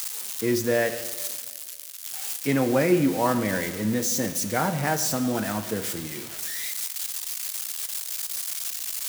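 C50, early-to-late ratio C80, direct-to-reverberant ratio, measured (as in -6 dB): 11.5 dB, 12.5 dB, 10.0 dB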